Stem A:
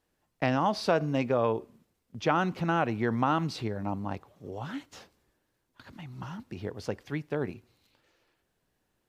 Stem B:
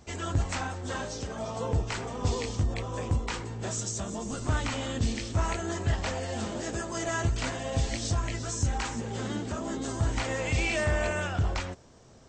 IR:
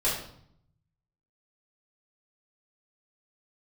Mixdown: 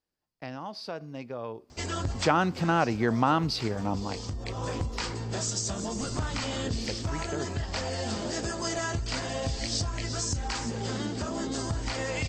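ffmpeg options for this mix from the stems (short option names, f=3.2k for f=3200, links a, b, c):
-filter_complex "[0:a]dynaudnorm=f=980:g=3:m=4dB,volume=-1.5dB,afade=t=in:st=1.65:d=0.31:silence=0.281838,afade=t=out:st=3.94:d=0.28:silence=0.446684,asplit=2[a][b];[1:a]acompressor=threshold=-31dB:ratio=6,adelay=1700,volume=3dB[c];[b]apad=whole_len=616785[d];[c][d]sidechaincompress=threshold=-29dB:ratio=8:attack=10:release=1150[e];[a][e]amix=inputs=2:normalize=0,equalizer=f=4.8k:w=3.6:g=10"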